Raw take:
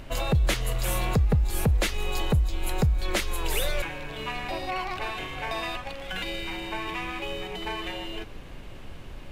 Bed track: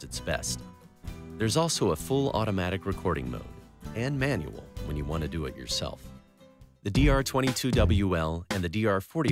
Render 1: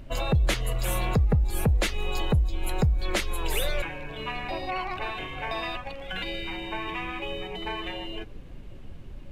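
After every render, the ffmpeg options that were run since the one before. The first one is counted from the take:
-af "afftdn=nr=10:nf=-41"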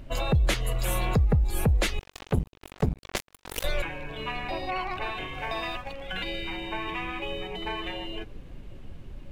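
-filter_complex "[0:a]asettb=1/sr,asplit=3[a][b][c];[a]atrim=end=1.994[d];[b]atrim=start=1.99:end=3.64,asetpts=PTS-STARTPTS,afade=t=in:d=0.004:c=qsin,afade=t=out:st=1.646:d=0.004:c=qsin,acrusher=bits=2:mix=0:aa=0.5[e];[c]atrim=start=3.636[f];[d][e]acrossfade=d=0.004:c1=hsin:c2=qsin[g];[g][f]acrossfade=d=0.004:c1=qsin:c2=hsin,asettb=1/sr,asplit=3[h][i][j];[h]atrim=end=5.344[k];[i]atrim=start=5.34:end=5.93,asetpts=PTS-STARTPTS,afade=t=in:d=0.004:c=qsin,afade=t=out:st=0.586:d=0.004:c=qsin,aeval=exprs='sgn(val(0))*max(abs(val(0))-0.00178,0)':c=same[l];[j]atrim=start=5.926[m];[k][l]acrossfade=d=0.004:c1=hsin:c2=qsin[n];[n][m]acrossfade=d=0.004:c1=qsin:c2=hsin"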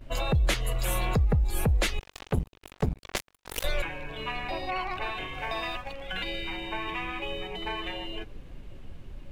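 -af "equalizer=f=180:w=0.36:g=-2.5,agate=range=-12dB:threshold=-47dB:ratio=16:detection=peak"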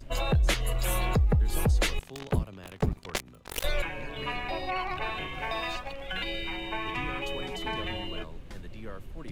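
-filter_complex "[1:a]volume=-17.5dB[a];[0:a][a]amix=inputs=2:normalize=0"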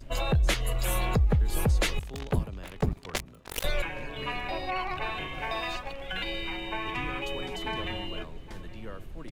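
-filter_complex "[0:a]asplit=2[a][b];[b]adelay=816.3,volume=-17dB,highshelf=f=4k:g=-18.4[c];[a][c]amix=inputs=2:normalize=0"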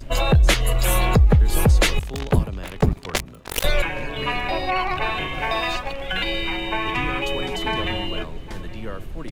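-af "volume=9dB,alimiter=limit=-3dB:level=0:latency=1"

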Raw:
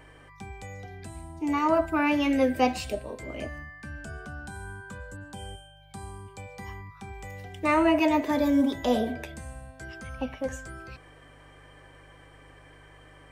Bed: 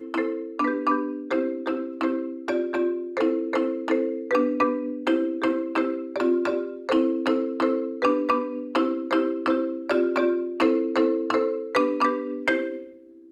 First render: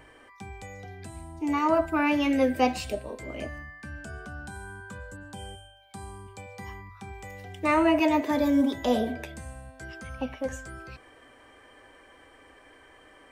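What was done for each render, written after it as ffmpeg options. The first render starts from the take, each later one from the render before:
-af "bandreject=f=50:t=h:w=4,bandreject=f=100:t=h:w=4,bandreject=f=150:t=h:w=4"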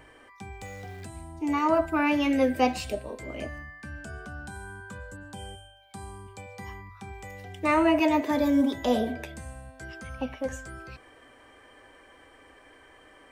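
-filter_complex "[0:a]asettb=1/sr,asplit=3[a][b][c];[a]atrim=end=0.614[d];[b]atrim=start=0.61:end=1.05,asetpts=PTS-STARTPTS,afade=t=in:d=0.004:c=qsin,afade=t=out:st=0.436:d=0.004:c=qsin,aeval=exprs='val(0)+0.5*0.00422*sgn(val(0))':c=same[e];[c]atrim=start=1.046[f];[d][e]acrossfade=d=0.004:c1=hsin:c2=qsin[g];[g][f]acrossfade=d=0.004:c1=qsin:c2=hsin"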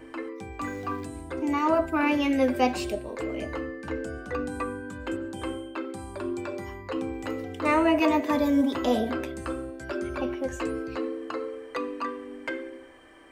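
-filter_complex "[1:a]volume=-10dB[a];[0:a][a]amix=inputs=2:normalize=0"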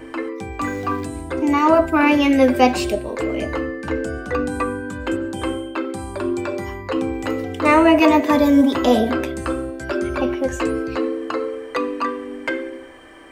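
-af "volume=9dB"

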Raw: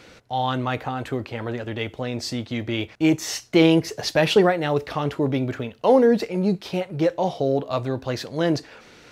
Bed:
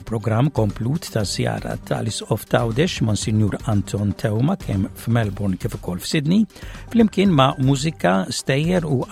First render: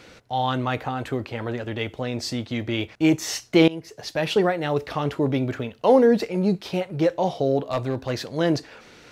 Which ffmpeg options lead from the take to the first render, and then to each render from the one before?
-filter_complex "[0:a]asettb=1/sr,asplit=3[a][b][c];[a]atrim=end=7.634[d];[b]atrim=start=7.63:end=8.13,asetpts=PTS-STARTPTS,afade=t=in:d=0.004:c=qsin,afade=t=out:st=0.496:d=0.004:c=qsin,asoftclip=type=hard:threshold=-17dB[e];[c]atrim=start=8.126[f];[d][e]acrossfade=d=0.004:c1=hsin:c2=qsin[g];[g][f]acrossfade=d=0.004:c1=qsin:c2=hsin,asplit=2[h][i];[h]atrim=end=3.68,asetpts=PTS-STARTPTS,afade=t=out:st=3.676:d=0.004:c=hsin:silence=0.1[j];[i]atrim=start=3.68,asetpts=PTS-STARTPTS,afade=t=in:d=1.71:c=qsin:silence=0.1[k];[j][k]concat=n=2:v=0:a=1"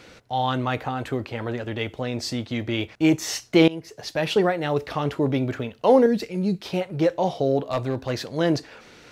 -filter_complex "[0:a]asettb=1/sr,asplit=3[a][b][c];[a]atrim=end=6.064[d];[b]atrim=start=6.06:end=6.61,asetpts=PTS-STARTPTS,afade=t=in:d=0.004:c=qsin,afade=t=out:st=0.546:d=0.004:c=qsin,equalizer=f=820:w=0.63:g=-10[e];[c]atrim=start=6.606[f];[d][e]acrossfade=d=0.004:c1=hsin:c2=qsin[g];[g][f]acrossfade=d=0.004:c1=qsin:c2=hsin"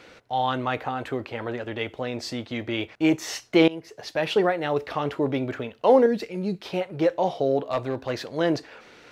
-af "bass=f=250:g=-7,treble=f=4k:g=-6"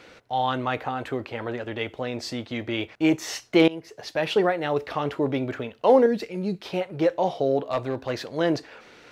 -af "asoftclip=type=hard:threshold=-7dB"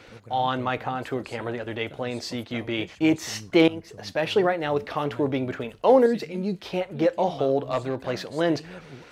-filter_complex "[1:a]volume=-24.5dB[a];[0:a][a]amix=inputs=2:normalize=0"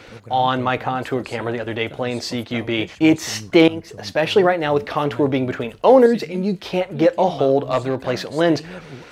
-af "volume=6.5dB,alimiter=limit=-2dB:level=0:latency=1"

